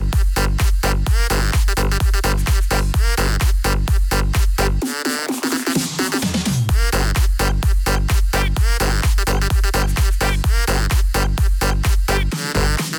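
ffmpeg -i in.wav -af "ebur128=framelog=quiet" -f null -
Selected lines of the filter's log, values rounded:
Integrated loudness:
  I:         -18.6 LUFS
  Threshold: -28.6 LUFS
Loudness range:
  LRA:         1.0 LU
  Threshold: -38.6 LUFS
  LRA low:   -19.2 LUFS
  LRA high:  -18.2 LUFS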